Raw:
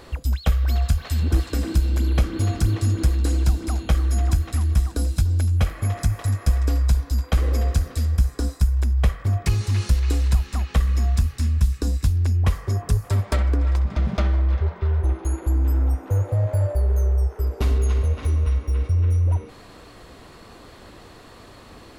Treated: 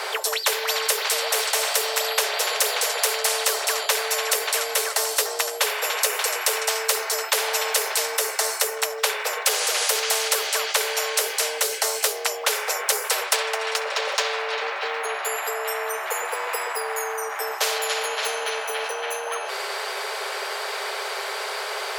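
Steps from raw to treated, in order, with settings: frequency shift +380 Hz; comb of notches 240 Hz; spectrum-flattening compressor 4:1; trim +6.5 dB

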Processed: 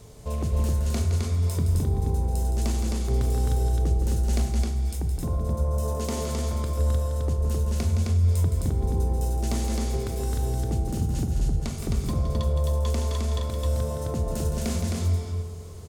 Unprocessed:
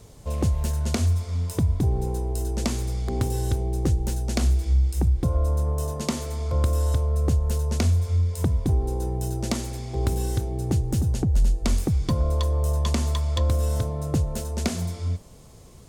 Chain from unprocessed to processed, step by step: peak limiter -22 dBFS, peak gain reduction 8.5 dB; loudspeakers at several distances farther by 57 m -8 dB, 90 m -3 dB; on a send at -7 dB: reverberation RT60 1.8 s, pre-delay 4 ms

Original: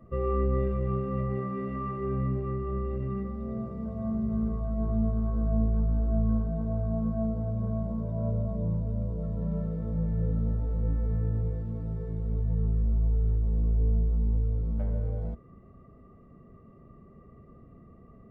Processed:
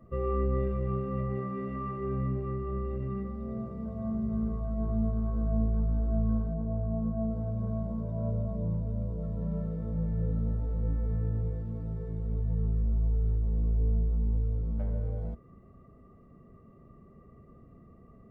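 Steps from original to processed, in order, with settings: 6.53–7.29 s: low-pass 1.1 kHz -> 1.3 kHz 12 dB/octave; trim -2 dB

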